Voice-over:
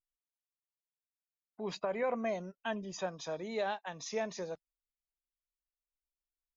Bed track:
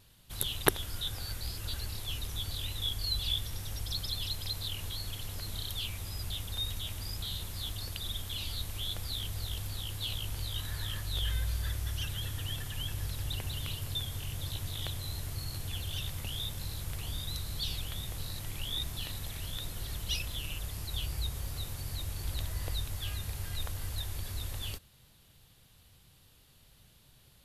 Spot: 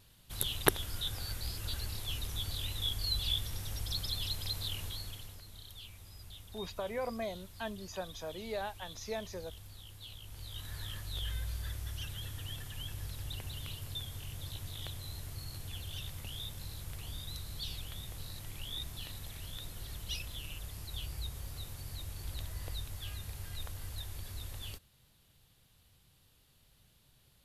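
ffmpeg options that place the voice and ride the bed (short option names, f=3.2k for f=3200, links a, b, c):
-filter_complex "[0:a]adelay=4950,volume=-3.5dB[a];[1:a]volume=6.5dB,afade=t=out:st=4.75:d=0.68:silence=0.251189,afade=t=in:st=10.23:d=0.54:silence=0.421697[b];[a][b]amix=inputs=2:normalize=0"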